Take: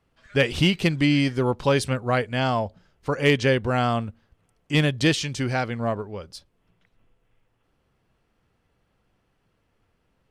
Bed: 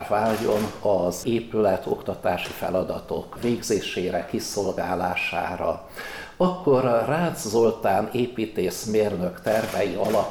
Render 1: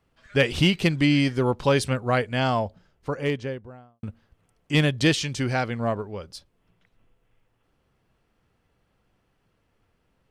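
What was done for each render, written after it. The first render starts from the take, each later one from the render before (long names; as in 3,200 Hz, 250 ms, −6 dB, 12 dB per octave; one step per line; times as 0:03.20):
0:02.58–0:04.03: fade out and dull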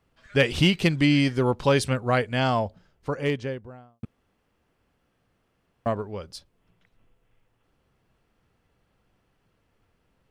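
0:04.05–0:05.86: fill with room tone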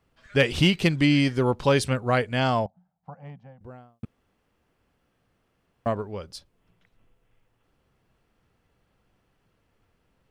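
0:02.66–0:03.61: pair of resonant band-passes 370 Hz, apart 2.1 octaves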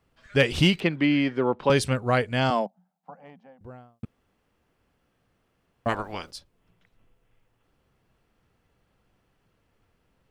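0:00.80–0:01.70: three-way crossover with the lows and the highs turned down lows −17 dB, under 180 Hz, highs −23 dB, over 3,300 Hz
0:02.50–0:03.61: Butterworth high-pass 180 Hz 48 dB per octave
0:05.88–0:06.30: ceiling on every frequency bin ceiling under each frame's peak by 23 dB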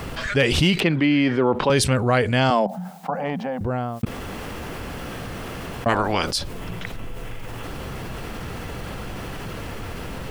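envelope flattener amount 70%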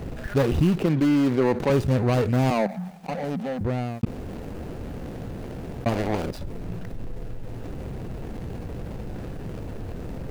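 running median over 41 samples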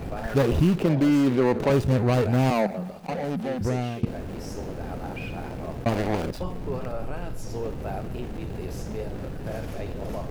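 mix in bed −14 dB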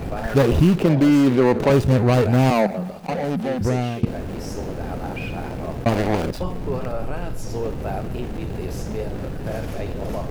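level +5 dB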